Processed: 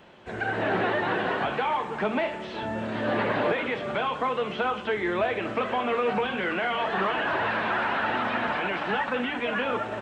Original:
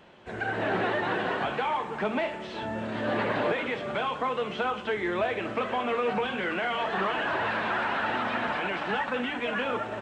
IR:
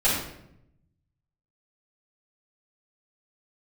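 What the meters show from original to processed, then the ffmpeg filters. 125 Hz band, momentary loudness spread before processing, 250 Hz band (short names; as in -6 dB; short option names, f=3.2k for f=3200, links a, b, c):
+2.0 dB, 3 LU, +2.0 dB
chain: -filter_complex "[0:a]acrossover=split=4400[a][b];[b]acompressor=threshold=-57dB:ratio=4:attack=1:release=60[c];[a][c]amix=inputs=2:normalize=0,volume=2dB"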